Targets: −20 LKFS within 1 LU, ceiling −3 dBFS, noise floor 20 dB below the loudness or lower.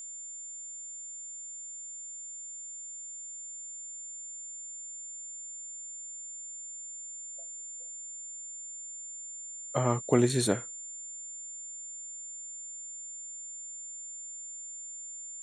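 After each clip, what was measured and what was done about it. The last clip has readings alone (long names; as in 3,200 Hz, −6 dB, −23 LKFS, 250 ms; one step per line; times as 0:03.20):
interfering tone 7,200 Hz; level of the tone −40 dBFS; integrated loudness −36.5 LKFS; sample peak −9.5 dBFS; target loudness −20.0 LKFS
→ notch filter 7,200 Hz, Q 30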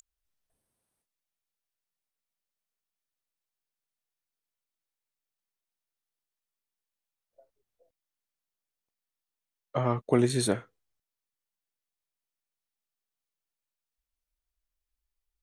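interfering tone none found; integrated loudness −28.0 LKFS; sample peak −9.5 dBFS; target loudness −20.0 LKFS
→ level +8 dB
brickwall limiter −3 dBFS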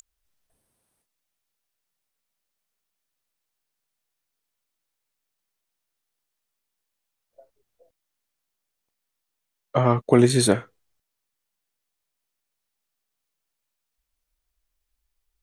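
integrated loudness −20.5 LKFS; sample peak −3.0 dBFS; background noise floor −82 dBFS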